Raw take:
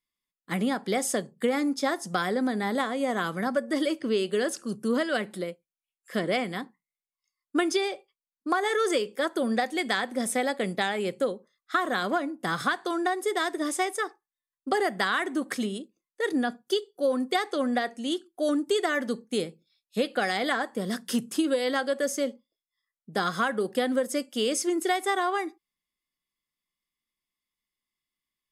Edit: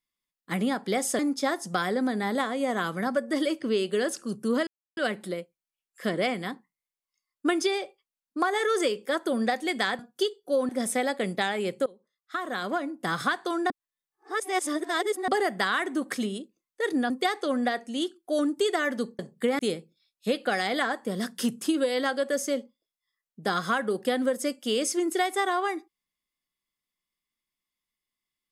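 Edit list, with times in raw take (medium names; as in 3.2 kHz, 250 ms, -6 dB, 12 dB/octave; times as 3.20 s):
1.19–1.59 s: move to 19.29 s
5.07 s: insert silence 0.30 s
11.26–12.43 s: fade in, from -21 dB
13.10–14.68 s: reverse
16.50–17.20 s: move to 10.09 s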